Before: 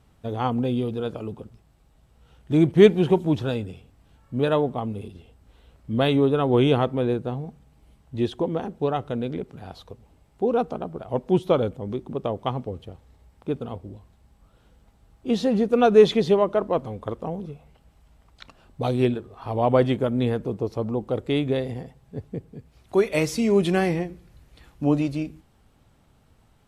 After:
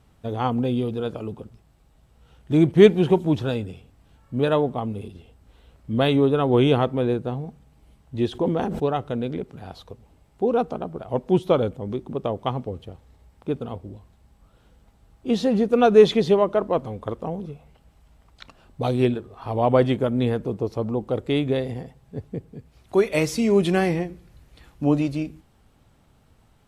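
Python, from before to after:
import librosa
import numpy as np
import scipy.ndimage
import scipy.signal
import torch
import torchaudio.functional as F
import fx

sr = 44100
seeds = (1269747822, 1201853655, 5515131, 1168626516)

y = fx.sustainer(x, sr, db_per_s=34.0, at=(8.3, 8.85))
y = F.gain(torch.from_numpy(y), 1.0).numpy()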